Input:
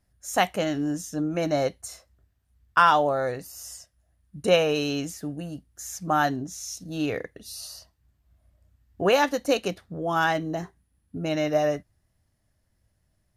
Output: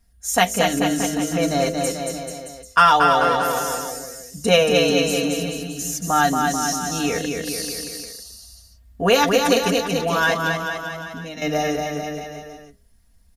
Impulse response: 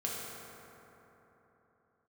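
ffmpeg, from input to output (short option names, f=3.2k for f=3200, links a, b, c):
-filter_complex "[0:a]lowshelf=f=120:g=11.5,aecho=1:1:4.3:0.76,bandreject=f=51.52:t=h:w=4,bandreject=f=103.04:t=h:w=4,bandreject=f=154.56:t=h:w=4,bandreject=f=206.08:t=h:w=4,bandreject=f=257.6:t=h:w=4,bandreject=f=309.12:t=h:w=4,bandreject=f=360.64:t=h:w=4,bandreject=f=412.16:t=h:w=4,bandreject=f=463.68:t=h:w=4,bandreject=f=515.2:t=h:w=4,bandreject=f=566.72:t=h:w=4,bandreject=f=618.24:t=h:w=4,bandreject=f=669.76:t=h:w=4,asettb=1/sr,asplit=3[a][b][c];[a]atrim=end=10.344[d];[b]atrim=start=10.34:end=11.42,asetpts=PTS-STARTPTS,afade=t=in:d=0.004:c=qsin,afade=t=out:st=1.076:d=0.004:c=qsin,acompressor=threshold=-41dB:ratio=2[e];[c]atrim=start=11.416[f];[d][e]acrossfade=d=0.004:c1=hsin:c2=qsin[g];[g][f]acrossfade=d=0.004:c1=qsin:c2=hsin,highshelf=f=2.6k:g=7.5,aecho=1:1:230|437|623.3|791|941.9:0.631|0.398|0.251|0.158|0.1,volume=1dB"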